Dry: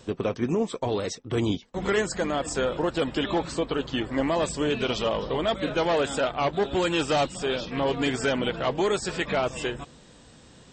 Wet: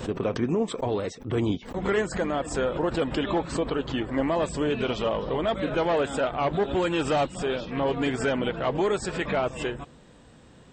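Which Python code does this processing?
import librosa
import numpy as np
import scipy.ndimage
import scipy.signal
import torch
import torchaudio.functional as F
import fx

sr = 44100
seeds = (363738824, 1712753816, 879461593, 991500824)

y = fx.peak_eq(x, sr, hz=5600.0, db=-9.5, octaves=1.6)
y = fx.pre_swell(y, sr, db_per_s=130.0)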